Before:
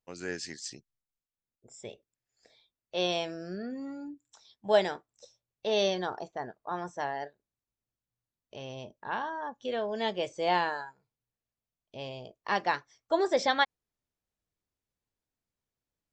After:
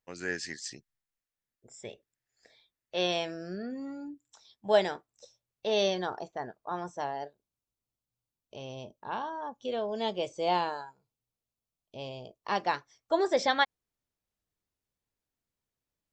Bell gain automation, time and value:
bell 1800 Hz 0.53 oct
3.02 s +6.5 dB
3.59 s -0.5 dB
6.53 s -0.5 dB
7.23 s -10 dB
12.11 s -10 dB
13.14 s 0 dB

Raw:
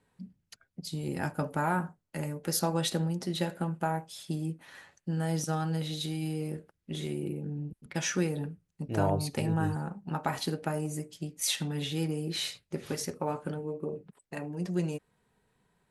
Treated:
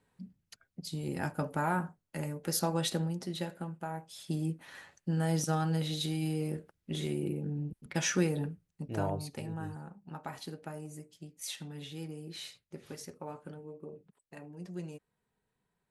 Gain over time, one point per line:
2.93 s -2 dB
3.86 s -9 dB
4.39 s +0.5 dB
8.48 s +0.5 dB
9.5 s -10.5 dB

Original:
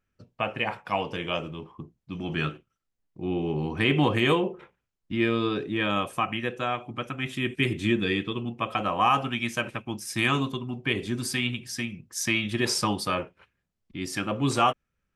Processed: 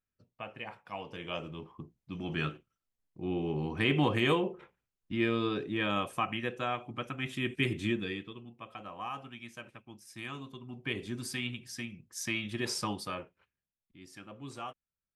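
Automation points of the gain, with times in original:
0.92 s -14 dB
1.57 s -5 dB
7.79 s -5 dB
8.46 s -17.5 dB
10.43 s -17.5 dB
10.83 s -8.5 dB
12.91 s -8.5 dB
13.97 s -19.5 dB

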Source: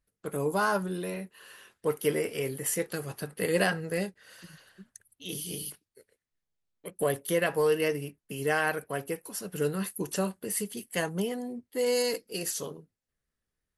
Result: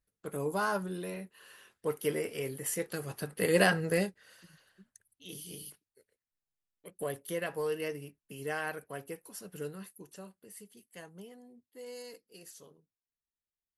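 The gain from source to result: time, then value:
2.74 s -4.5 dB
3.91 s +3 dB
4.44 s -8.5 dB
9.51 s -8.5 dB
10.1 s -18.5 dB

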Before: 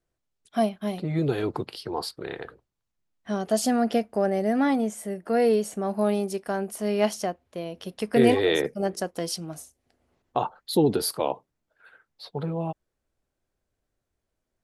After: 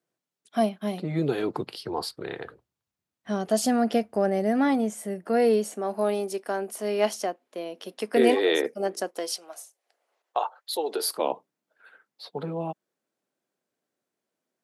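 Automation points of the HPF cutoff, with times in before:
HPF 24 dB/oct
1.43 s 150 Hz
2.04 s 72 Hz
5.08 s 72 Hz
5.8 s 250 Hz
9.05 s 250 Hz
9.45 s 520 Hz
10.86 s 520 Hz
11.29 s 180 Hz

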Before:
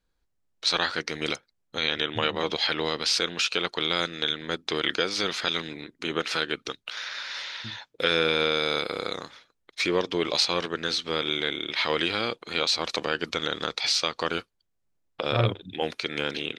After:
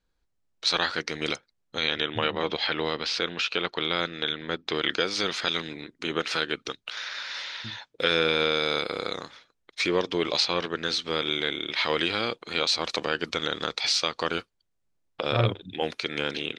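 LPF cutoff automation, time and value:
1.81 s 8600 Hz
2.21 s 3800 Hz
4.53 s 3800 Hz
5.16 s 9000 Hz
10.28 s 9000 Hz
10.52 s 4500 Hz
11.01 s 10000 Hz

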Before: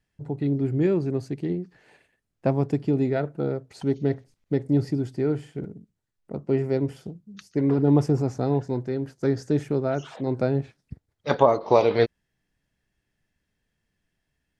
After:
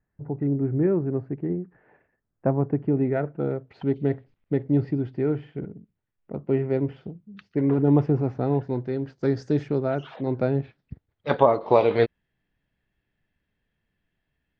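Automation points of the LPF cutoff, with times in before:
LPF 24 dB/oct
2.67 s 1700 Hz
3.56 s 3100 Hz
8.46 s 3100 Hz
9.49 s 5600 Hz
9.97 s 3700 Hz

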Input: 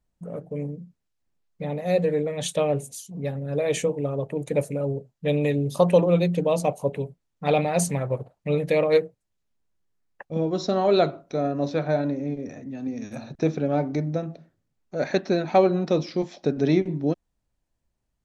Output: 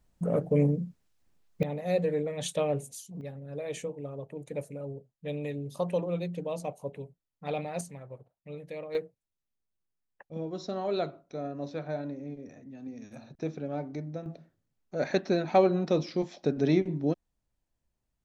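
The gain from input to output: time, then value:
+7 dB
from 1.63 s -5.5 dB
from 3.21 s -12 dB
from 7.81 s -18.5 dB
from 8.95 s -11 dB
from 14.26 s -4 dB

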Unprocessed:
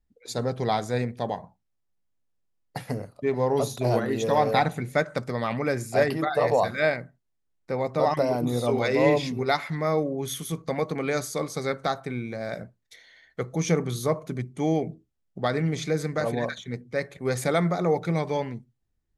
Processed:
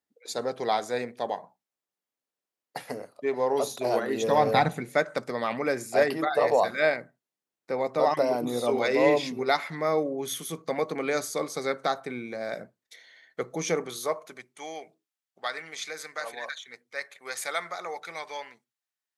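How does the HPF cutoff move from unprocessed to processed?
4.01 s 360 Hz
4.64 s 81 Hz
4.86 s 270 Hz
13.5 s 270 Hz
14.63 s 1100 Hz

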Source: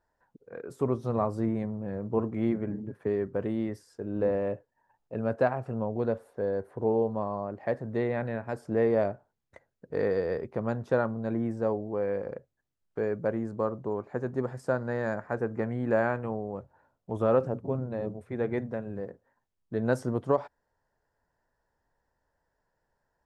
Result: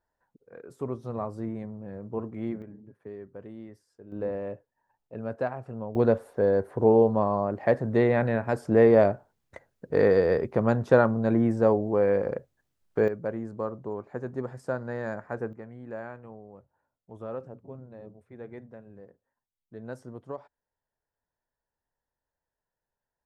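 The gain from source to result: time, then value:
-5 dB
from 2.62 s -12.5 dB
from 4.12 s -4.5 dB
from 5.95 s +7 dB
from 13.08 s -2.5 dB
from 15.53 s -12.5 dB

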